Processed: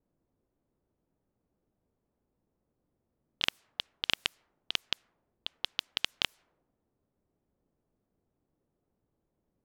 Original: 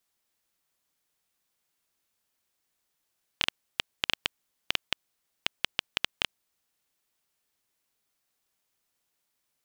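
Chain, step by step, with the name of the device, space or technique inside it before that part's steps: cassette deck with a dynamic noise filter (white noise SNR 23 dB; low-pass opened by the level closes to 310 Hz, open at -33.5 dBFS)

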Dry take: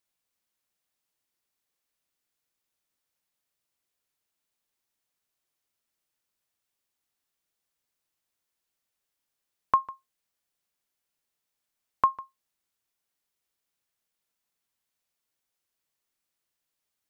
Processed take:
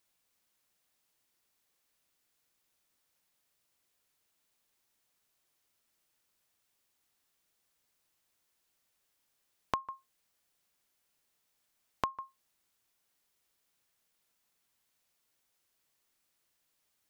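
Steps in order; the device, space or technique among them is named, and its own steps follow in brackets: serial compression, leveller first (compressor 2:1, threshold -24 dBFS, peak gain reduction 4.5 dB; compressor 4:1, threshold -38 dBFS, peak gain reduction 15 dB); gain +5.5 dB

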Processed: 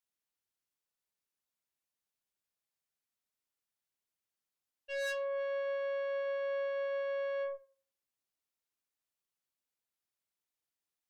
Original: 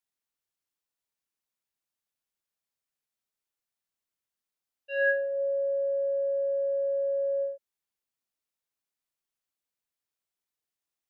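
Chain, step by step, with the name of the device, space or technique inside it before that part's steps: rockabilly slapback (tube stage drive 34 dB, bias 0.55; tape echo 84 ms, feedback 31%, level -20 dB, low-pass 1400 Hz)

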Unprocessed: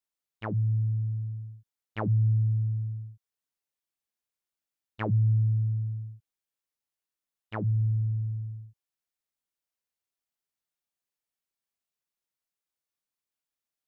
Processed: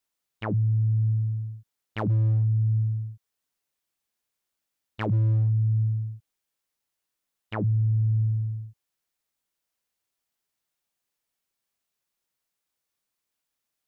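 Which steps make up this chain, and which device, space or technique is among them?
clipper into limiter (hard clip -21 dBFS, distortion -24 dB; limiter -26 dBFS, peak gain reduction 5 dB); gain +7 dB

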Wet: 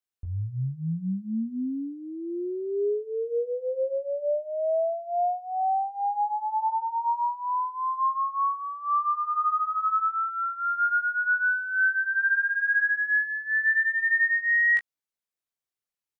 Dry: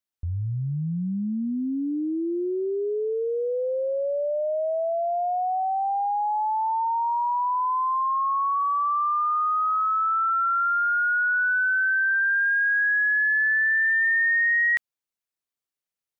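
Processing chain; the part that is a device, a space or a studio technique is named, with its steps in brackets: double-tracked vocal (doubler 17 ms -11.5 dB; chorus 0.34 Hz, delay 19.5 ms, depth 7.7 ms)

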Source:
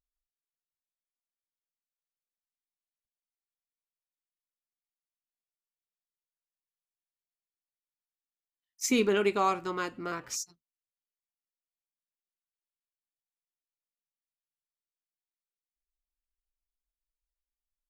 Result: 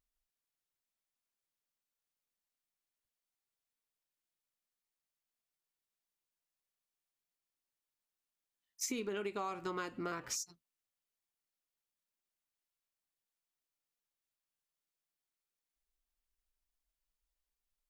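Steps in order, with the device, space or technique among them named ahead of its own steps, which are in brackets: serial compression, leveller first (compressor 2.5:1, threshold -27 dBFS, peak gain reduction 4.5 dB; compressor 6:1, threshold -39 dBFS, peak gain reduction 13 dB); gain +2.5 dB

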